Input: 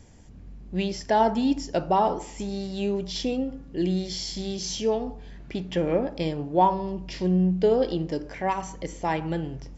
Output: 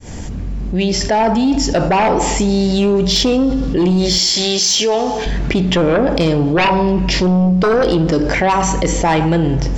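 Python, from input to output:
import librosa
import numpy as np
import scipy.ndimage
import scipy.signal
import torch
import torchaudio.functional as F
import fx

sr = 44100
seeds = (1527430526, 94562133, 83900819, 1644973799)

y = fx.fade_in_head(x, sr, length_s=2.28)
y = fx.highpass(y, sr, hz=1000.0, slope=6, at=(4.18, 5.26))
y = fx.fold_sine(y, sr, drive_db=10, ceiling_db=-9.0)
y = fx.rev_plate(y, sr, seeds[0], rt60_s=1.4, hf_ratio=0.9, predelay_ms=0, drr_db=17.0)
y = fx.env_flatten(y, sr, amount_pct=70)
y = y * 10.0 ** (-2.0 / 20.0)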